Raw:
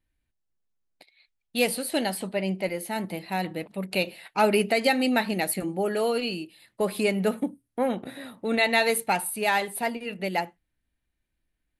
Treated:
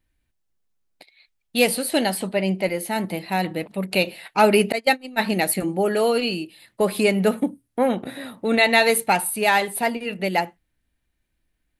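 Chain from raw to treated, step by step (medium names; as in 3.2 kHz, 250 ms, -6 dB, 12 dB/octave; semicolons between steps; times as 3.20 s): 4.72–5.19 s: gate -20 dBFS, range -31 dB; trim +5.5 dB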